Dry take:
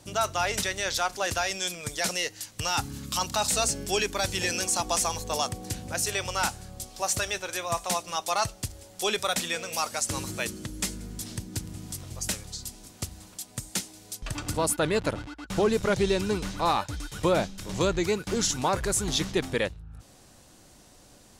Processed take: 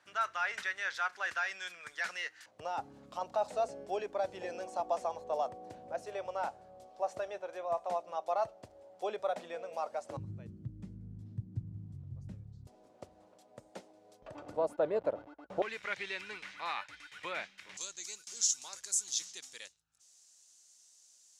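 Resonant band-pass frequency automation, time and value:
resonant band-pass, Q 2.8
1,600 Hz
from 0:02.46 630 Hz
from 0:10.17 120 Hz
from 0:12.67 590 Hz
from 0:15.62 2,100 Hz
from 0:17.77 6,600 Hz

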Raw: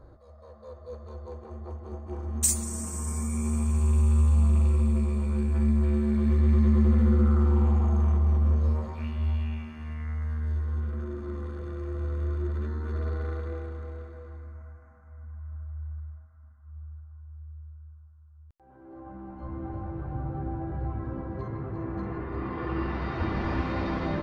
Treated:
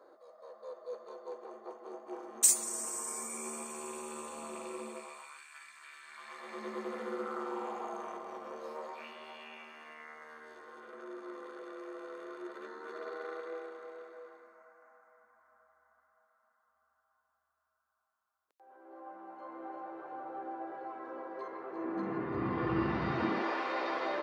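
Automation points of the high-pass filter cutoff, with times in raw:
high-pass filter 24 dB per octave
0:04.87 380 Hz
0:05.44 1,400 Hz
0:06.04 1,400 Hz
0:06.63 430 Hz
0:21.66 430 Hz
0:22.45 100 Hz
0:23.10 100 Hz
0:23.53 420 Hz

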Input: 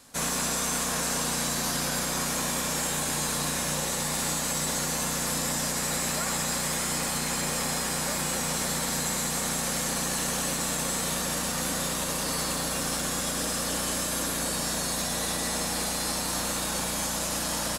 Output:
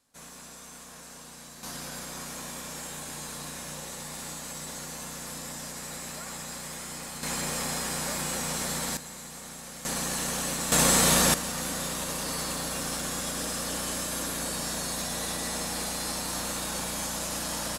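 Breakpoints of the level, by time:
−18 dB
from 0:01.63 −10 dB
from 0:07.23 −2.5 dB
from 0:08.97 −13.5 dB
from 0:09.85 −2 dB
from 0:10.72 +8 dB
from 0:11.34 −3 dB

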